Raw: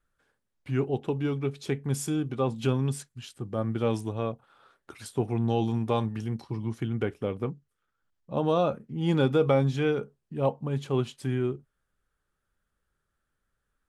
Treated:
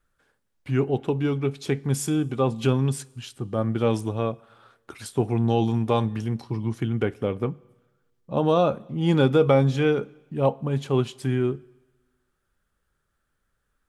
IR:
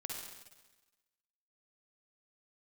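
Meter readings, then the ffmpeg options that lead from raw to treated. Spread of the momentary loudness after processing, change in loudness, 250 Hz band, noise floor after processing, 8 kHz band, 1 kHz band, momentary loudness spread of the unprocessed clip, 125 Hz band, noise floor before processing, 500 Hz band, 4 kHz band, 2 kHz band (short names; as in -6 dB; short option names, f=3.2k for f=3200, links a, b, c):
11 LU, +4.5 dB, +4.5 dB, -75 dBFS, +4.5 dB, +4.5 dB, 11 LU, +4.5 dB, -81 dBFS, +4.5 dB, +4.5 dB, +4.5 dB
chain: -filter_complex "[0:a]asplit=2[a][b];[1:a]atrim=start_sample=2205[c];[b][c]afir=irnorm=-1:irlink=0,volume=-20.5dB[d];[a][d]amix=inputs=2:normalize=0,volume=4dB"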